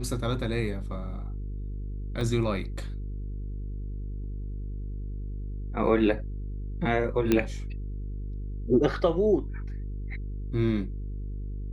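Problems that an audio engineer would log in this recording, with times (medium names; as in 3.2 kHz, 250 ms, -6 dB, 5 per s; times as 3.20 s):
buzz 50 Hz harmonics 9 -34 dBFS
2.21 s: dropout 2.7 ms
7.32 s: pop -10 dBFS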